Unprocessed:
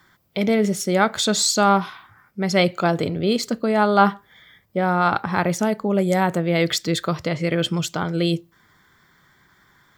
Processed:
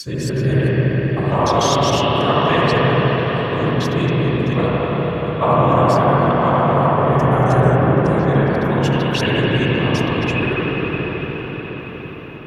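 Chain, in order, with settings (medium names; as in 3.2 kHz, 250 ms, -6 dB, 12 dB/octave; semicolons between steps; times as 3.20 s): slices played last to first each 117 ms, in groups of 8; bass shelf 260 Hz -9.5 dB; gate with hold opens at -48 dBFS; whisper effect; peaking EQ 170 Hz +13 dB 0.46 oct; reverberation RT60 5.7 s, pre-delay 47 ms, DRR -9 dB; tape speed -20%; high-pass 52 Hz; trim -3.5 dB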